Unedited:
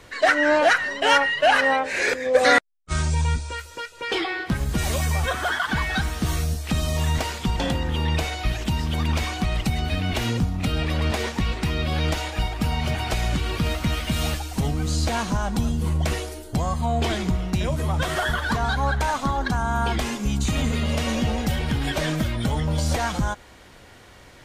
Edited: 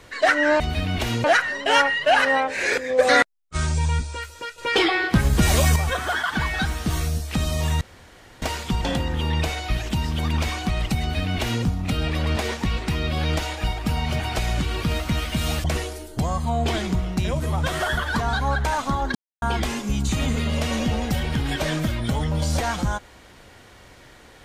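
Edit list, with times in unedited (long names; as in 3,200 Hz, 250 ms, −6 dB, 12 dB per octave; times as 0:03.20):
0:03.94–0:05.12: clip gain +6 dB
0:07.17: splice in room tone 0.61 s
0:09.75–0:10.39: duplicate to 0:00.60
0:14.39–0:16.00: remove
0:19.51–0:19.78: silence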